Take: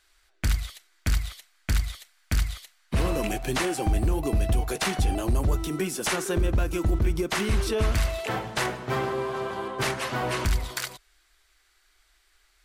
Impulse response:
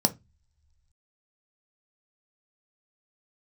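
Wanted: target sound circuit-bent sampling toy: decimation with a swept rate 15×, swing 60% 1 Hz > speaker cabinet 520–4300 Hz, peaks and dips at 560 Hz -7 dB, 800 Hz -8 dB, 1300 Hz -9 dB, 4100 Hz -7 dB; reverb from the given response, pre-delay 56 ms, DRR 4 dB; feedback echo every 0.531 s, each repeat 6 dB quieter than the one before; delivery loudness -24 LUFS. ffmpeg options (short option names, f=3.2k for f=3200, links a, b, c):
-filter_complex "[0:a]aecho=1:1:531|1062|1593|2124|2655|3186:0.501|0.251|0.125|0.0626|0.0313|0.0157,asplit=2[a][b];[1:a]atrim=start_sample=2205,adelay=56[c];[b][c]afir=irnorm=-1:irlink=0,volume=-14dB[d];[a][d]amix=inputs=2:normalize=0,acrusher=samples=15:mix=1:aa=0.000001:lfo=1:lforange=9:lforate=1,highpass=520,equalizer=f=560:t=q:w=4:g=-7,equalizer=f=800:t=q:w=4:g=-8,equalizer=f=1.3k:t=q:w=4:g=-9,equalizer=f=4.1k:t=q:w=4:g=-7,lowpass=f=4.3k:w=0.5412,lowpass=f=4.3k:w=1.3066,volume=9.5dB"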